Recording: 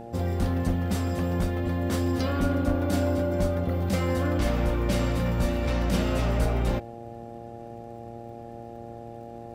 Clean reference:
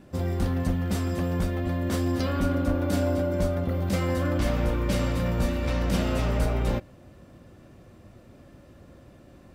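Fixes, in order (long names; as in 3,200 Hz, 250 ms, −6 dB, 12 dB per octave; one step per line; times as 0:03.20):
click removal
hum removal 116.6 Hz, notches 7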